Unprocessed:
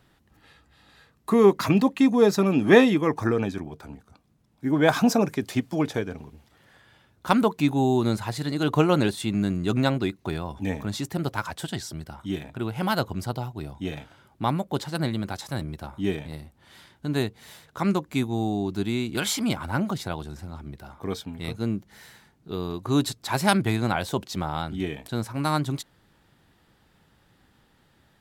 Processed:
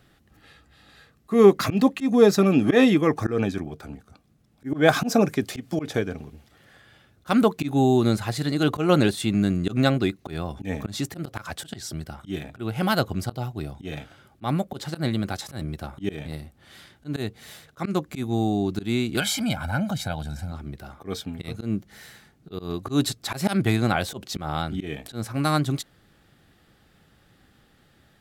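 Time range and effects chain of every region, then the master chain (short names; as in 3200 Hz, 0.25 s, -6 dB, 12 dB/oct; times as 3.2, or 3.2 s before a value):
19.2–20.52 comb 1.3 ms, depth 79% + compressor 1.5:1, threshold -31 dBFS
whole clip: notch 950 Hz, Q 5.2; auto swell 0.127 s; gain +3 dB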